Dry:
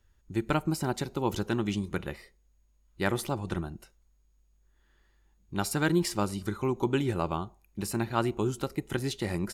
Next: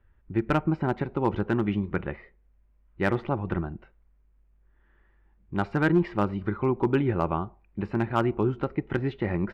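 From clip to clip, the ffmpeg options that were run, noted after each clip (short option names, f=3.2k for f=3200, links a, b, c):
-af "lowpass=f=2.3k:w=0.5412,lowpass=f=2.3k:w=1.3066,volume=17.5dB,asoftclip=hard,volume=-17.5dB,volume=4dB"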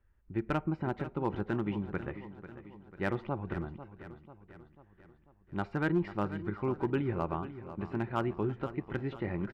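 -af "aecho=1:1:493|986|1479|1972|2465:0.224|0.119|0.0629|0.0333|0.0177,volume=-7.5dB"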